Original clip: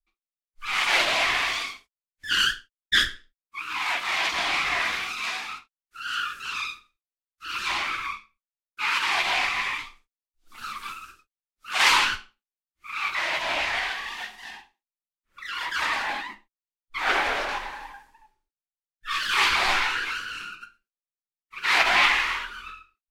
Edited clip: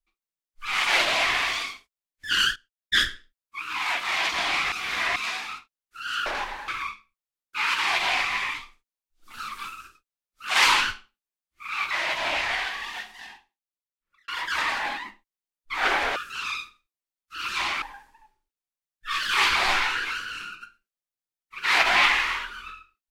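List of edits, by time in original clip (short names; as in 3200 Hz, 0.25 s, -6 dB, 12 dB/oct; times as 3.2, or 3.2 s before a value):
2.56–3.03 fade in, from -16.5 dB
4.72–5.16 reverse
6.26–7.92 swap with 17.4–17.82
14.18–15.52 fade out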